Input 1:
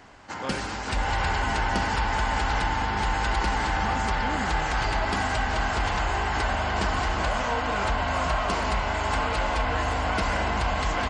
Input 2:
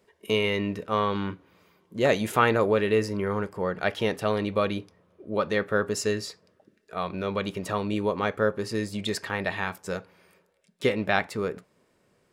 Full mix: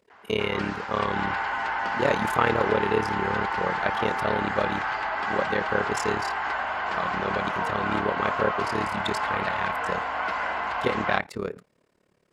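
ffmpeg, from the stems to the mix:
ffmpeg -i stem1.wav -i stem2.wav -filter_complex "[0:a]bandpass=frequency=1300:width_type=q:width=1:csg=0,adelay=100,volume=1.5dB[link_01];[1:a]tremolo=f=36:d=0.919,volume=2dB[link_02];[link_01][link_02]amix=inputs=2:normalize=0,highshelf=frequency=7500:gain=-5" out.wav

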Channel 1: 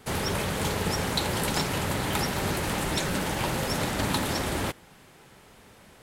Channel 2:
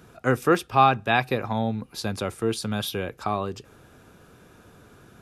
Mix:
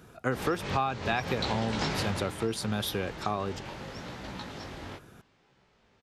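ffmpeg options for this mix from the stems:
ffmpeg -i stem1.wav -i stem2.wav -filter_complex "[0:a]flanger=delay=15.5:depth=7.8:speed=0.75,lowpass=frequency=6000:width=0.5412,lowpass=frequency=6000:width=1.3066,acontrast=81,adelay=250,volume=-5dB,afade=type=out:start_time=1.96:duration=0.39:silence=0.251189[link_01];[1:a]volume=-2dB,asplit=2[link_02][link_03];[link_03]apad=whole_len=276560[link_04];[link_01][link_04]sidechaincompress=threshold=-25dB:ratio=8:attack=39:release=325[link_05];[link_05][link_02]amix=inputs=2:normalize=0,acompressor=threshold=-25dB:ratio=6" out.wav

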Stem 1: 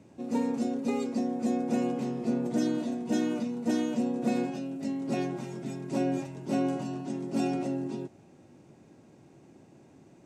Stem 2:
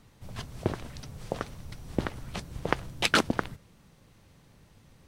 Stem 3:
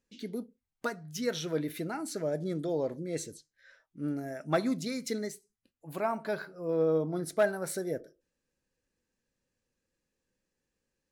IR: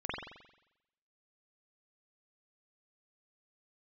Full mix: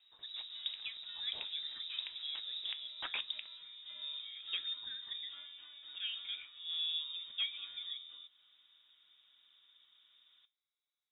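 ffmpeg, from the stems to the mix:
-filter_complex "[0:a]equalizer=frequency=120:width=0.48:gain=-12,acompressor=threshold=-47dB:ratio=2,asoftclip=type=tanh:threshold=-36.5dB,adelay=200,volume=-1.5dB[link_01];[1:a]aemphasis=mode=reproduction:type=75kf,volume=-5.5dB[link_02];[2:a]volume=-6.5dB[link_03];[link_01][link_02][link_03]amix=inputs=3:normalize=0,flanger=delay=7.4:depth=1.4:regen=-78:speed=1.3:shape=triangular,lowpass=frequency=3300:width_type=q:width=0.5098,lowpass=frequency=3300:width_type=q:width=0.6013,lowpass=frequency=3300:width_type=q:width=0.9,lowpass=frequency=3300:width_type=q:width=2.563,afreqshift=-3900,alimiter=level_in=2dB:limit=-24dB:level=0:latency=1:release=373,volume=-2dB"

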